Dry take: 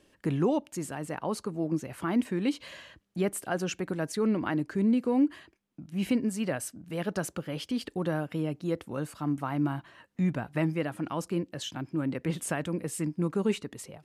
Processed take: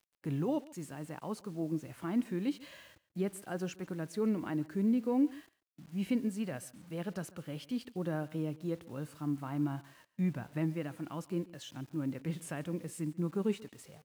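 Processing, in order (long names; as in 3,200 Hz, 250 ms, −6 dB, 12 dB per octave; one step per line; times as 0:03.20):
bit reduction 9 bits
harmonic and percussive parts rebalanced percussive −7 dB
single-tap delay 140 ms −21 dB
level −4.5 dB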